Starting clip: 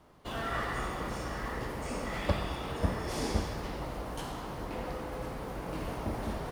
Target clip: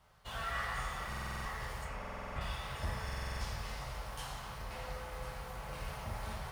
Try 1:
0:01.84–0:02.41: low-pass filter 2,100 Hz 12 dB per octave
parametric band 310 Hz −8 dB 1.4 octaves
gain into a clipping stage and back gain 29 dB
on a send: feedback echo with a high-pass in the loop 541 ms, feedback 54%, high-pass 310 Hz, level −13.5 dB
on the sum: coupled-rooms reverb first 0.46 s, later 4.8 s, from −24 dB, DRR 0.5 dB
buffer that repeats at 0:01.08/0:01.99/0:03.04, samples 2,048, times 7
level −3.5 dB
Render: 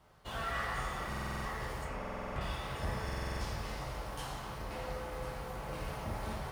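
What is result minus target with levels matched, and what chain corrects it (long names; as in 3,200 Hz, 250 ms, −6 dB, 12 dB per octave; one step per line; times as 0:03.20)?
250 Hz band +4.5 dB
0:01.84–0:02.41: low-pass filter 2,100 Hz 12 dB per octave
parametric band 310 Hz −19 dB 1.4 octaves
gain into a clipping stage and back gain 29 dB
on a send: feedback echo with a high-pass in the loop 541 ms, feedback 54%, high-pass 310 Hz, level −13.5 dB
on the sum: coupled-rooms reverb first 0.46 s, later 4.8 s, from −24 dB, DRR 0.5 dB
buffer that repeats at 0:01.08/0:01.99/0:03.04, samples 2,048, times 7
level −3.5 dB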